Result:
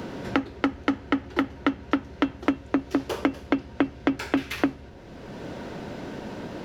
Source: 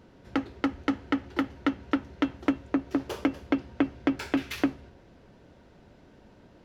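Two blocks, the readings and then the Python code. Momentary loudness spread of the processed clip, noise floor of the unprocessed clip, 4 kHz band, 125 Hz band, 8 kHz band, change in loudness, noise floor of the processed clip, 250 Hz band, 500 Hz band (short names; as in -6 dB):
11 LU, -56 dBFS, +4.0 dB, +5.0 dB, n/a, +2.0 dB, -45 dBFS, +2.0 dB, +4.5 dB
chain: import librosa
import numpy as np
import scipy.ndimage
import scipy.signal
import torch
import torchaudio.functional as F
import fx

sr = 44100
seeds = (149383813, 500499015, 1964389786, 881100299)

y = fx.band_squash(x, sr, depth_pct=70)
y = y * librosa.db_to_amplitude(3.0)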